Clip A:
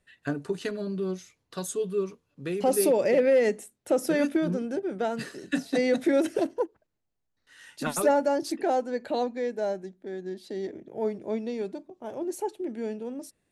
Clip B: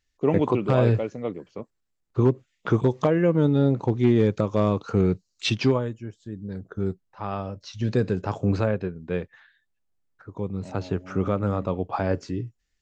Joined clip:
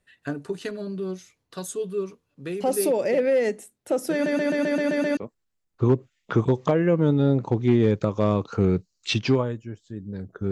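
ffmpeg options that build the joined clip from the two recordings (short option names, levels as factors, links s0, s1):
-filter_complex "[0:a]apad=whole_dur=10.51,atrim=end=10.51,asplit=8[s0][s1][s2][s3][s4][s5][s6][s7];[s0]atrim=end=4.262[s8];[s1]atrim=start=4.128:end=4.262[s9];[s2]atrim=start=4.128:end=4.262[s10];[s3]atrim=start=4.128:end=4.262[s11];[s4]atrim=start=4.128:end=4.262[s12];[s5]atrim=start=4.128:end=4.262[s13];[s6]atrim=start=4.128:end=4.262[s14];[s7]atrim=start=4.128:end=4.262[s15];[1:a]atrim=start=1.528:end=6.87[s16];[s8][s9]acrossfade=d=0.004:c1=hsin:c2=hsin[s17];[s17][s10]acrossfade=d=0.004:c1=hsin:c2=hsin[s18];[s18][s11]acrossfade=d=0.004:c1=hsin:c2=hsin[s19];[s19][s12]acrossfade=d=0.004:c1=hsin:c2=hsin[s20];[s20][s13]acrossfade=d=0.004:c1=hsin:c2=hsin[s21];[s21][s14]acrossfade=d=0.004:c1=hsin:c2=hsin[s22];[s22][s15]acrossfade=d=0.004:c1=hsin:c2=hsin[s23];[s23][s16]acrossfade=d=0.004:c1=hsin:c2=hsin"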